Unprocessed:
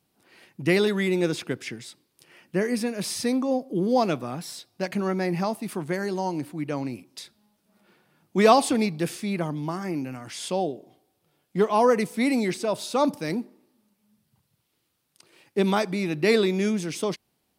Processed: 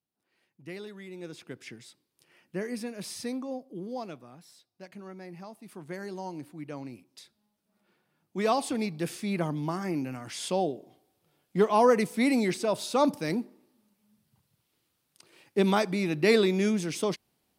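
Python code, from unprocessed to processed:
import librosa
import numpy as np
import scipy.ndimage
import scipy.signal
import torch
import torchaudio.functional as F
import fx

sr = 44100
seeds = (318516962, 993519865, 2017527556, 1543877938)

y = fx.gain(x, sr, db=fx.line((1.09, -20.0), (1.71, -9.0), (3.24, -9.0), (4.32, -18.0), (5.52, -18.0), (5.97, -10.0), (8.44, -10.0), (9.42, -1.5)))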